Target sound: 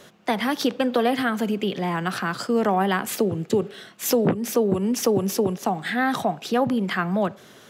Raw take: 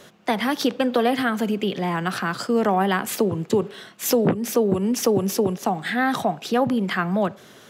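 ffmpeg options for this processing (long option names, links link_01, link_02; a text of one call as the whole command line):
ffmpeg -i in.wav -filter_complex "[0:a]asettb=1/sr,asplit=3[link_01][link_02][link_03];[link_01]atrim=end=3.184[link_04];[link_02]atrim=start=3.18:end=3.89,asetpts=PTS-STARTPTS,afade=type=in:duration=0.004:curve=qsin,afade=type=out:start_time=0.706:duration=0.004:curve=qsin,equalizer=frequency=1000:width_type=o:width=0.22:gain=-10.5[link_05];[link_03]atrim=start=3.886[link_06];[link_04][link_05]acrossfade=duration=0.004:curve1=hsin:curve2=qsin[link_07];[link_07][link_06]acrossfade=duration=0.004:curve1=qsin:curve2=hsin,volume=-1dB" out.wav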